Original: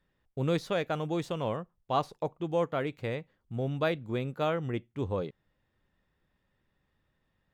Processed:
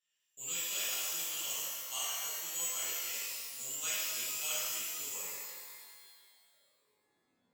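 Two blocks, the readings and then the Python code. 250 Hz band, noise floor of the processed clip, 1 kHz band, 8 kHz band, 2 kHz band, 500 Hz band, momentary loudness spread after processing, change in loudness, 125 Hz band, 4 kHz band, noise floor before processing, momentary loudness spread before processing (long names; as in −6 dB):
−27.0 dB, −79 dBFS, −14.0 dB, can't be measured, −1.5 dB, −22.0 dB, 11 LU, −2.0 dB, −32.0 dB, +6.5 dB, −77 dBFS, 7 LU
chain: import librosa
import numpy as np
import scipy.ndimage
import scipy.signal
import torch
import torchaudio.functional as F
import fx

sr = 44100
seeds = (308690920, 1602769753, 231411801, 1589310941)

y = (np.kron(scipy.signal.resample_poly(x, 1, 6), np.eye(6)[0]) * 6)[:len(x)]
y = fx.filter_sweep_bandpass(y, sr, from_hz=3000.0, to_hz=220.0, start_s=4.99, end_s=7.51, q=7.4)
y = fx.rev_shimmer(y, sr, seeds[0], rt60_s=1.7, semitones=12, shimmer_db=-2, drr_db=-10.5)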